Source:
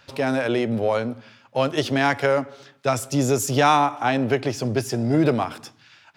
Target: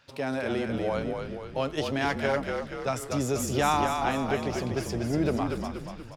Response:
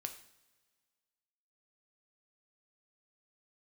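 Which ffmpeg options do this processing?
-filter_complex "[0:a]asplit=8[a][b][c][d][e][f][g][h];[b]adelay=239,afreqshift=-42,volume=-5dB[i];[c]adelay=478,afreqshift=-84,volume=-10.4dB[j];[d]adelay=717,afreqshift=-126,volume=-15.7dB[k];[e]adelay=956,afreqshift=-168,volume=-21.1dB[l];[f]adelay=1195,afreqshift=-210,volume=-26.4dB[m];[g]adelay=1434,afreqshift=-252,volume=-31.8dB[n];[h]adelay=1673,afreqshift=-294,volume=-37.1dB[o];[a][i][j][k][l][m][n][o]amix=inputs=8:normalize=0,volume=-8dB"

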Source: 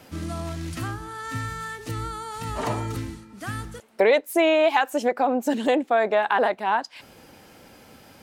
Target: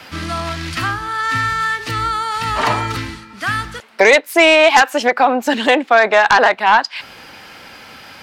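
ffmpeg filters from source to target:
-filter_complex "[0:a]equalizer=f=4.8k:t=o:w=0.52:g=4.5,acrossover=split=370|970|4000[a][b][c][d];[c]aeval=exprs='0.282*sin(PI/2*2.82*val(0)/0.282)':c=same[e];[a][b][e][d]amix=inputs=4:normalize=0,volume=4.5dB"

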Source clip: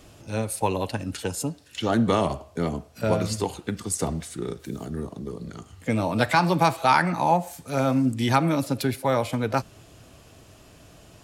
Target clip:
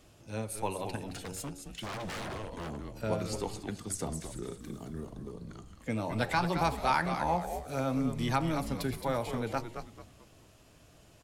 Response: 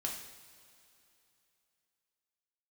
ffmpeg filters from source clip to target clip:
-filter_complex "[0:a]bandreject=f=93.62:t=h:w=4,bandreject=f=187.24:t=h:w=4,bandreject=f=280.86:t=h:w=4,bandreject=f=374.48:t=h:w=4,bandreject=f=468.1:t=h:w=4,bandreject=f=561.72:t=h:w=4,bandreject=f=655.34:t=h:w=4,bandreject=f=748.96:t=h:w=4,bandreject=f=842.58:t=h:w=4,bandreject=f=936.2:t=h:w=4,bandreject=f=1.02982k:t=h:w=4,bandreject=f=1.12344k:t=h:w=4,asplit=5[a][b][c][d][e];[b]adelay=219,afreqshift=-110,volume=-8dB[f];[c]adelay=438,afreqshift=-220,volume=-17.4dB[g];[d]adelay=657,afreqshift=-330,volume=-26.7dB[h];[e]adelay=876,afreqshift=-440,volume=-36.1dB[i];[a][f][g][h][i]amix=inputs=5:normalize=0,asettb=1/sr,asplit=3[j][k][l];[j]atrim=end=1.064[m];[k]atrim=start=1.06:end=2.93,asetpts=PTS-STARTPTS,afade=t=in:d=0.004:c=qsin,afade=t=out:st=1.866:d=0.004:c=qsin,aeval=exprs='0.0596*(abs(mod(val(0)/0.0596+3,4)-2)-1)':c=same[n];[l]atrim=start=2.926[o];[m][n]acrossfade=d=0.004:c1=hsin:c2=qsin[p];[p][o]acrossfade=d=0.004:c1=qsin:c2=hsin,volume=-9dB"

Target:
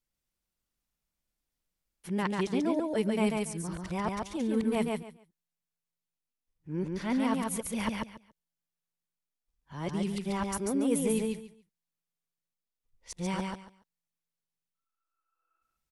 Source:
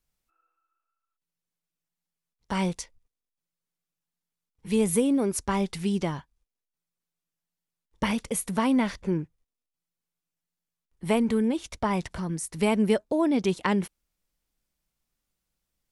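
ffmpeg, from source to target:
-af "areverse,aecho=1:1:141|282|423:0.708|0.142|0.0283,volume=-6.5dB"

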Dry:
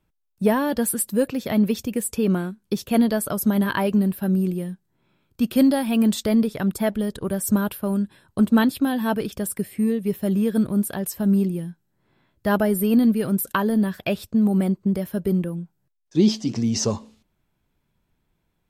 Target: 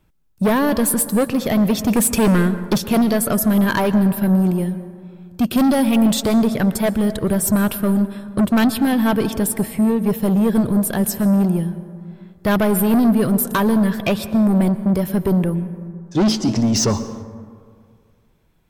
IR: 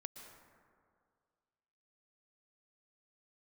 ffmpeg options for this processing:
-filter_complex "[0:a]asettb=1/sr,asplit=3[a][b][c];[a]atrim=end=1.874[d];[b]atrim=start=1.87:end=2.78,asetpts=PTS-STARTPTS,afade=t=in:d=0.004:c=qsin,afade=t=out:st=0.906:d=0.004:c=qsin,acontrast=84[e];[c]atrim=start=2.776[f];[d][e]acrossfade=d=0.004:c1=hsin:c2=qsin[g];[g][f]acrossfade=d=0.004:c1=qsin:c2=hsin,asoftclip=type=tanh:threshold=-21.5dB,asplit=2[h][i];[1:a]atrim=start_sample=2205,lowshelf=f=190:g=5.5[j];[i][j]afir=irnorm=-1:irlink=0,volume=1dB[k];[h][k]amix=inputs=2:normalize=0,volume=4.5dB"

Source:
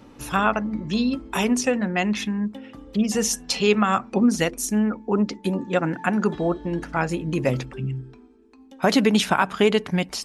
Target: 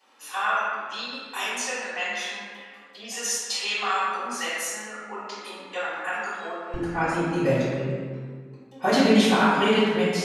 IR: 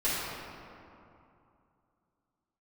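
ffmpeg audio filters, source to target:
-filter_complex "[0:a]asetnsamples=n=441:p=0,asendcmd='6.74 highpass f 120',highpass=970[a];[1:a]atrim=start_sample=2205,asetrate=74970,aresample=44100[b];[a][b]afir=irnorm=-1:irlink=0,volume=-5.5dB"

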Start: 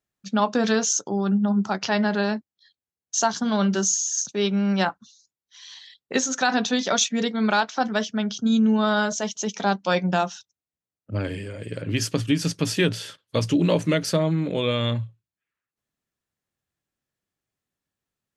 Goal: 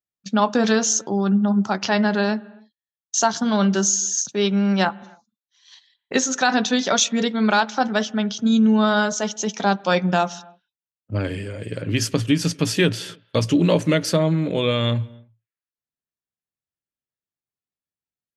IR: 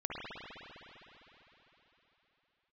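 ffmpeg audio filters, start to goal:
-filter_complex "[0:a]agate=range=-16dB:threshold=-41dB:ratio=16:detection=peak,asplit=2[a][b];[b]highshelf=f=3.9k:g=-8.5[c];[1:a]atrim=start_sample=2205,afade=t=out:st=0.36:d=0.01,atrim=end_sample=16317[d];[c][d]afir=irnorm=-1:irlink=0,volume=-22.5dB[e];[a][e]amix=inputs=2:normalize=0,volume=2.5dB"

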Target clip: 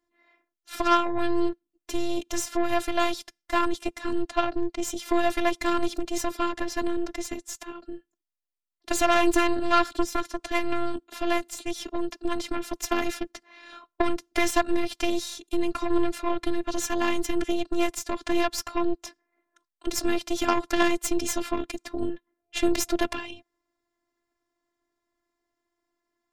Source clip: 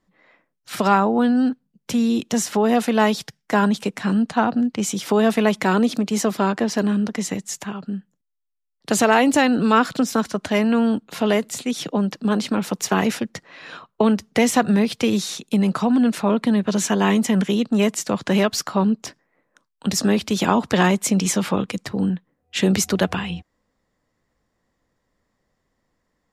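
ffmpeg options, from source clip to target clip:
-af "lowshelf=f=140:t=q:w=1.5:g=-8,aeval=exprs='0.794*(cos(1*acos(clip(val(0)/0.794,-1,1)))-cos(1*PI/2))+0.1*(cos(3*acos(clip(val(0)/0.794,-1,1)))-cos(3*PI/2))+0.0891*(cos(6*acos(clip(val(0)/0.794,-1,1)))-cos(6*PI/2))':c=same,afftfilt=real='hypot(re,im)*cos(PI*b)':imag='0':win_size=512:overlap=0.75"

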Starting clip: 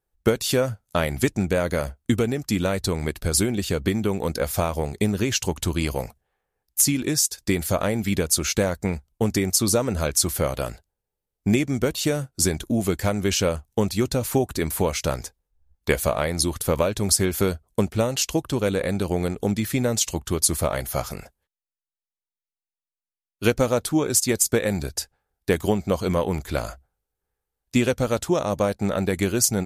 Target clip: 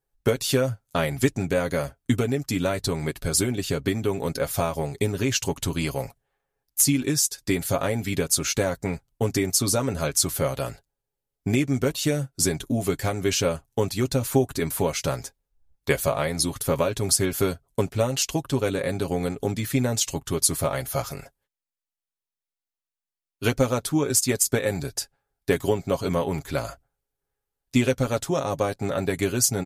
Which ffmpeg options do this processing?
-af "aecho=1:1:7.3:0.61,volume=-2.5dB"

